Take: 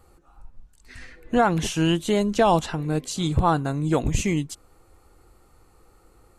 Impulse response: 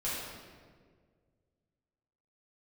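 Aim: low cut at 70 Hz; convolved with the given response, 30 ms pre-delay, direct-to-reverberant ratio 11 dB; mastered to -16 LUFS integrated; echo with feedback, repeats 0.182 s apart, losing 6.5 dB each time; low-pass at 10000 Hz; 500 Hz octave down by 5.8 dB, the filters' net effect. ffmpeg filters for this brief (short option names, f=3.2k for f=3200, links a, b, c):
-filter_complex "[0:a]highpass=70,lowpass=10k,equalizer=f=500:t=o:g=-8,aecho=1:1:182|364|546|728|910|1092:0.473|0.222|0.105|0.0491|0.0231|0.0109,asplit=2[a][b];[1:a]atrim=start_sample=2205,adelay=30[c];[b][c]afir=irnorm=-1:irlink=0,volume=-16.5dB[d];[a][d]amix=inputs=2:normalize=0,volume=8dB"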